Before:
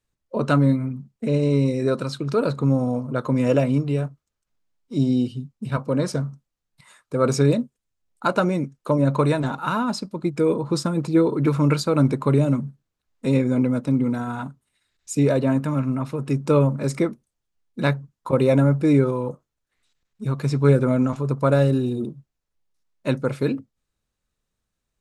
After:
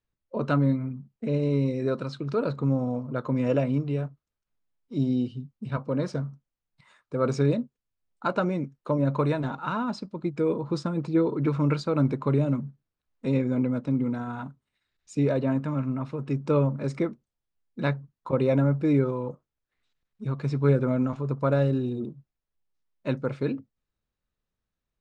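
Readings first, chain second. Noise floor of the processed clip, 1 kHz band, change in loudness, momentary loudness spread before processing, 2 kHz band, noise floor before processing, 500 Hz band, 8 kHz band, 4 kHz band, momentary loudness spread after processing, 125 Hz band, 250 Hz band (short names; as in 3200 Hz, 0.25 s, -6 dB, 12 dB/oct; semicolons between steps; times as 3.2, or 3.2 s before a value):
under -85 dBFS, -5.5 dB, -5.0 dB, 11 LU, -6.0 dB, -81 dBFS, -5.5 dB, under -10 dB, -9.0 dB, 11 LU, -5.0 dB, -5.0 dB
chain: air absorption 120 m; gain -5 dB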